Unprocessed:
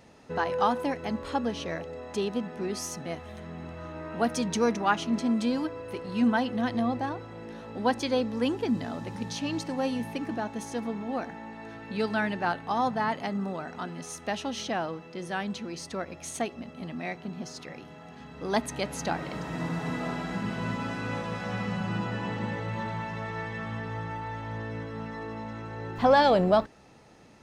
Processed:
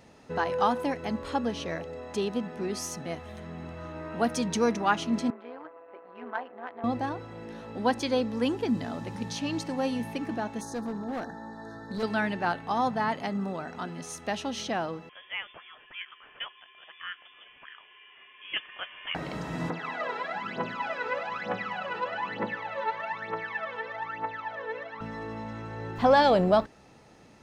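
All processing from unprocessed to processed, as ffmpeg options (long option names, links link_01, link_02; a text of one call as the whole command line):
ffmpeg -i in.wav -filter_complex "[0:a]asettb=1/sr,asplit=3[link_01][link_02][link_03];[link_01]atrim=end=5.304[link_04];[link_02]atrim=start=5.3:end=6.84,asetpts=PTS-STARTPTS,afade=type=in:duration=0.004:curve=qsin,afade=type=out:start_time=1.536:duration=0.004:curve=qsin,tremolo=f=180:d=0.71,adynamicsmooth=sensitivity=2:basefreq=1500,highpass=710,lowpass=2100[link_05];[link_03]atrim=start=6.836[link_06];[link_04][link_05]acrossfade=duration=0.004:curve1=hsin:curve2=qsin[link_07];[link_07][link_06]acrossfade=duration=0.004:curve1=qsin:curve2=hsin,asettb=1/sr,asplit=3[link_08][link_09][link_10];[link_08]atrim=end=10.614[link_11];[link_09]atrim=start=10.61:end=12.03,asetpts=PTS-STARTPTS,afade=type=in:duration=0.004:curve=qsin,afade=type=out:start_time=1.416:duration=0.004:curve=qsin,asuperstop=centerf=2600:order=20:qfactor=1.5,asoftclip=type=hard:threshold=-29dB[link_12];[link_10]atrim=start=12.026[link_13];[link_11][link_12]acrossfade=duration=0.004:curve1=hsin:curve2=qsin[link_14];[link_14][link_13]acrossfade=duration=0.004:curve1=qsin:curve2=hsin,asettb=1/sr,asplit=3[link_15][link_16][link_17];[link_15]atrim=end=15.094[link_18];[link_16]atrim=start=15.09:end=19.15,asetpts=PTS-STARTPTS,afade=type=in:duration=0.004:curve=qsin,afade=type=out:start_time=4.056:duration=0.004:curve=qsin,highpass=990,lowpass=frequency=3100:width_type=q:width=0.5098,lowpass=frequency=3100:width_type=q:width=0.6013,lowpass=frequency=3100:width_type=q:width=0.9,lowpass=frequency=3100:width_type=q:width=2.563,afreqshift=-3700[link_19];[link_17]atrim=start=19.146[link_20];[link_18][link_19]acrossfade=duration=0.004:curve1=hsin:curve2=qsin[link_21];[link_21][link_20]acrossfade=duration=0.004:curve1=qsin:curve2=hsin,asettb=1/sr,asplit=3[link_22][link_23][link_24];[link_22]atrim=end=19.704[link_25];[link_23]atrim=start=19.7:end=25.01,asetpts=PTS-STARTPTS,afade=type=in:duration=0.004:curve=qsin,afade=type=out:start_time=5.306:duration=0.004:curve=qsin,aphaser=in_gain=1:out_gain=1:delay=2.3:decay=0.78:speed=1.1:type=triangular,highpass=460,lowpass=3100[link_26];[link_24]atrim=start=25.006[link_27];[link_25][link_26]acrossfade=duration=0.004:curve1=hsin:curve2=qsin[link_28];[link_28][link_27]acrossfade=duration=0.004:curve1=qsin:curve2=hsin" out.wav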